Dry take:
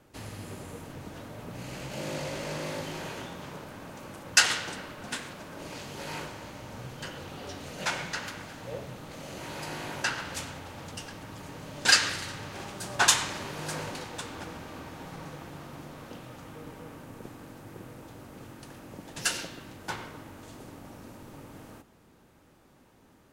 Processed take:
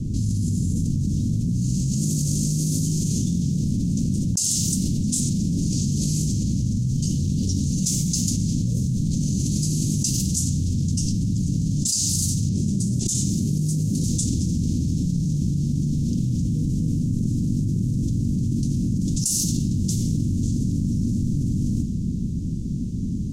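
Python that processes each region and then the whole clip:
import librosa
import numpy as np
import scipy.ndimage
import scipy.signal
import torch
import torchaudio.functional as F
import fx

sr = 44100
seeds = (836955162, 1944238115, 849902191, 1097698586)

y = fx.chain(x, sr, fx.highpass(hz=420.0, slope=6),
    fx.over_compress(threshold_db=-29.0, ratio=-0.5),
    fx.tilt_eq(slope=-3.5), at=(12.49, 14.04))
y = fx.env_lowpass(y, sr, base_hz=2600.0, full_db=-29.5)
y = scipy.signal.sosfilt(scipy.signal.cheby1(3, 1.0, [210.0, 6400.0], 'bandstop', fs=sr, output='sos'), y)
y = fx.env_flatten(y, sr, amount_pct=100)
y = y * 10.0 ** (-1.0 / 20.0)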